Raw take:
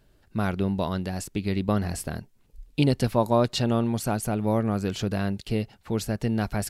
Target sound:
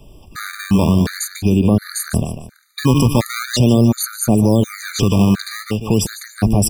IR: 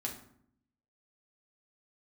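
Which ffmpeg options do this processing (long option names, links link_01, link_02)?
-filter_complex "[0:a]aecho=1:1:148|296|444:0.282|0.0874|0.0271,acrossover=split=200|540|4400[link_01][link_02][link_03][link_04];[link_02]acrusher=samples=18:mix=1:aa=0.000001:lfo=1:lforange=28.8:lforate=0.42[link_05];[link_03]acompressor=threshold=-41dB:ratio=6[link_06];[link_01][link_05][link_06][link_04]amix=inputs=4:normalize=0,alimiter=level_in=22dB:limit=-1dB:release=50:level=0:latency=1,afftfilt=real='re*gt(sin(2*PI*1.4*pts/sr)*(1-2*mod(floor(b*sr/1024/1200),2)),0)':imag='im*gt(sin(2*PI*1.4*pts/sr)*(1-2*mod(floor(b*sr/1024/1200),2)),0)':win_size=1024:overlap=0.75,volume=-3dB"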